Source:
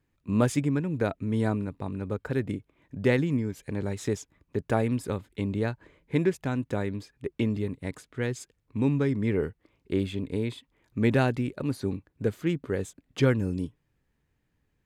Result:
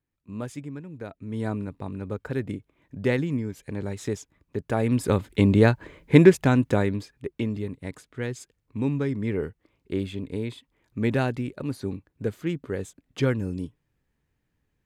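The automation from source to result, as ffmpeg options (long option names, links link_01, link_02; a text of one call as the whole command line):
ffmpeg -i in.wav -af "volume=11dB,afade=type=in:start_time=1.12:duration=0.49:silence=0.316228,afade=type=in:start_time=4.76:duration=0.54:silence=0.266073,afade=type=out:start_time=6.28:duration=1.04:silence=0.251189" out.wav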